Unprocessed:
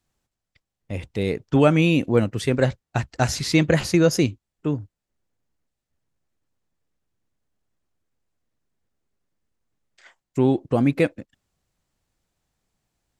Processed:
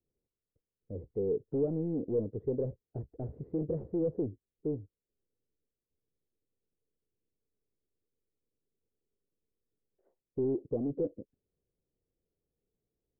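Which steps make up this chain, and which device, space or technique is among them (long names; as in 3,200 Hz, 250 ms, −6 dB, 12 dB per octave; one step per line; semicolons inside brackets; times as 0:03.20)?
overdriven synthesiser ladder filter (soft clipping −22 dBFS, distortion −7 dB; transistor ladder low-pass 490 Hz, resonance 65%)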